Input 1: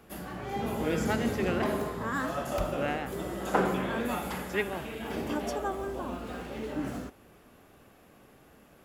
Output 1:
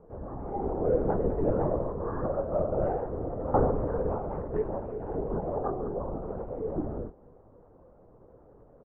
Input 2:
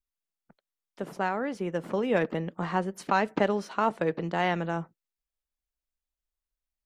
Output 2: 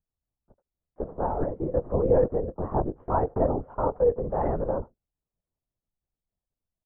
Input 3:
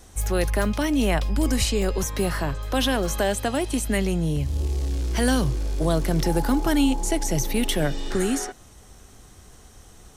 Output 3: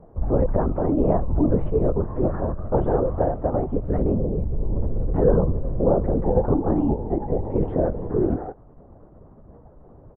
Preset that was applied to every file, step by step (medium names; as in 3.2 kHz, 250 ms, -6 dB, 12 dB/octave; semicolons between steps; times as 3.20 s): low-pass 1 kHz 24 dB/octave; peaking EQ 500 Hz +9 dB 0.3 oct; doubling 16 ms -8 dB; LPC vocoder at 8 kHz whisper